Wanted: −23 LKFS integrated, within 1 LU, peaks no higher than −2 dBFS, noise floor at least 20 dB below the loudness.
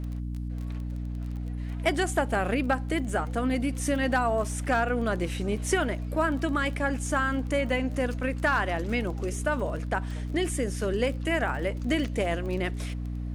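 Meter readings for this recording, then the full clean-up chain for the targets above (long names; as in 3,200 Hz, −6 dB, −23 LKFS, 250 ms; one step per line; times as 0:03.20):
crackle rate 22 per second; mains hum 60 Hz; hum harmonics up to 300 Hz; level of the hum −30 dBFS; integrated loudness −28.5 LKFS; sample peak −12.5 dBFS; target loudness −23.0 LKFS
→ click removal
hum removal 60 Hz, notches 5
level +5.5 dB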